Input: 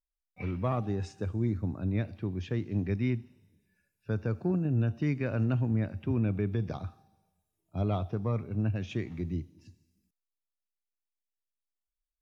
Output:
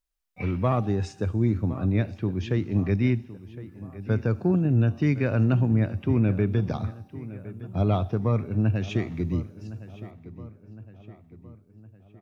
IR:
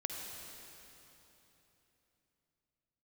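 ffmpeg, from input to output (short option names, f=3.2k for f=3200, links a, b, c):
-filter_complex "[0:a]asplit=2[a][b];[b]adelay=1062,lowpass=f=3.2k:p=1,volume=-16dB,asplit=2[c][d];[d]adelay=1062,lowpass=f=3.2k:p=1,volume=0.52,asplit=2[e][f];[f]adelay=1062,lowpass=f=3.2k:p=1,volume=0.52,asplit=2[g][h];[h]adelay=1062,lowpass=f=3.2k:p=1,volume=0.52,asplit=2[i][j];[j]adelay=1062,lowpass=f=3.2k:p=1,volume=0.52[k];[a][c][e][g][i][k]amix=inputs=6:normalize=0,volume=6.5dB"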